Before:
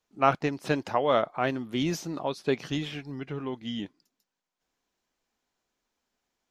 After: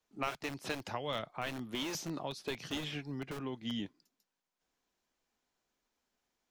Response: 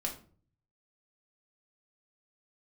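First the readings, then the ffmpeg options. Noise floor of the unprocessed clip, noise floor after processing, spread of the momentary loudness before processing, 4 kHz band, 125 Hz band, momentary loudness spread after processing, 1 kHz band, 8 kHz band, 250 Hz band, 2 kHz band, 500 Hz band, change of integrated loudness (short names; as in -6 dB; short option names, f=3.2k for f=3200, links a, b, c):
under -85 dBFS, under -85 dBFS, 11 LU, -3.0 dB, -9.5 dB, 3 LU, -13.0 dB, -2.0 dB, -9.0 dB, -7.0 dB, -13.5 dB, -10.0 dB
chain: -filter_complex "[0:a]acrossover=split=170|2200[a][b][c];[a]aeval=exprs='(mod(84.1*val(0)+1,2)-1)/84.1':c=same[d];[b]acompressor=threshold=-35dB:ratio=6[e];[d][e][c]amix=inputs=3:normalize=0,volume=-2.5dB"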